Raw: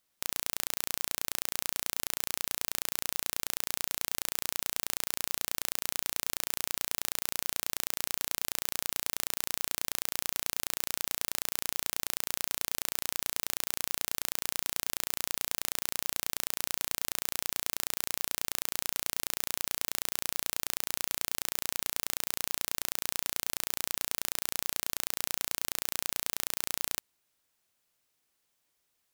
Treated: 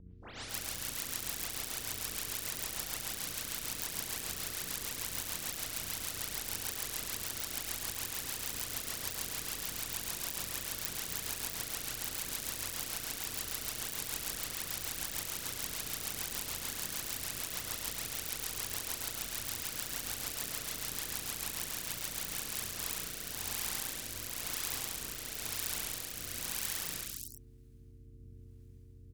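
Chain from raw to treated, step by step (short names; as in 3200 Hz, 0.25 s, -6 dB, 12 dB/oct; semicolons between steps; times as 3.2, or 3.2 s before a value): spectral delay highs late, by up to 0.282 s; hum 60 Hz, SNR 16 dB; harmoniser -5 st -2 dB, +7 st -2 dB; rotary speaker horn 6.7 Hz, later 1 Hz, at 22.15; on a send: echo 0.109 s -6.5 dB; on the sum: gain -4.5 dB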